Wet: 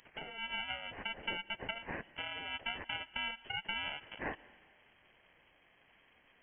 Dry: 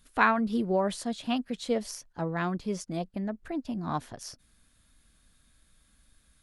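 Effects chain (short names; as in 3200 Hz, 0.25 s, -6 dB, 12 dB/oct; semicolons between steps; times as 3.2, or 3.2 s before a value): FFT order left unsorted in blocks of 64 samples; HPF 990 Hz 6 dB/oct; compressor 20:1, threshold -38 dBFS, peak gain reduction 21.5 dB; digital reverb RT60 2.1 s, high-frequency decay 0.65×, pre-delay 80 ms, DRR 19.5 dB; inverted band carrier 3200 Hz; gain +11 dB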